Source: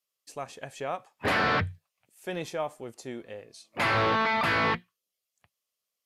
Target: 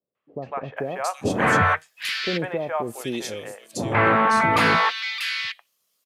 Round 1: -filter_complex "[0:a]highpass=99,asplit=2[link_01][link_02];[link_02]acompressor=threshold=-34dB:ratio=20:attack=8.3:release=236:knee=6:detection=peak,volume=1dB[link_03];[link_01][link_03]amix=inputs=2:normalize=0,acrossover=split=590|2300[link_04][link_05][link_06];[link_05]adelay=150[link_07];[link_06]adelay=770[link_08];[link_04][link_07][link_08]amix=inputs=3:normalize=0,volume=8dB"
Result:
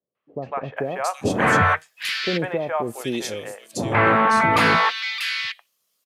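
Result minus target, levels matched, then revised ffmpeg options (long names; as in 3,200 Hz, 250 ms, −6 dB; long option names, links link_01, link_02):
downward compressor: peak gain reduction −8.5 dB
-filter_complex "[0:a]highpass=99,asplit=2[link_01][link_02];[link_02]acompressor=threshold=-43dB:ratio=20:attack=8.3:release=236:knee=6:detection=peak,volume=1dB[link_03];[link_01][link_03]amix=inputs=2:normalize=0,acrossover=split=590|2300[link_04][link_05][link_06];[link_05]adelay=150[link_07];[link_06]adelay=770[link_08];[link_04][link_07][link_08]amix=inputs=3:normalize=0,volume=8dB"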